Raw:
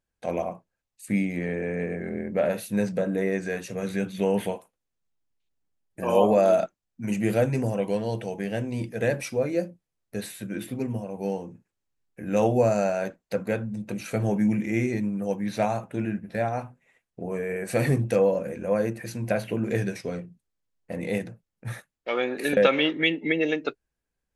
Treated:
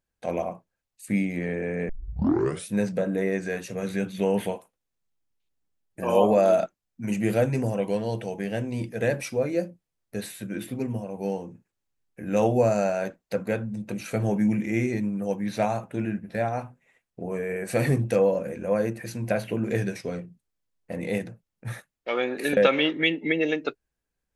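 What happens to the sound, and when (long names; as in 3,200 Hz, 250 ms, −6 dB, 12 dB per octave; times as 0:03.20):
0:01.89: tape start 0.82 s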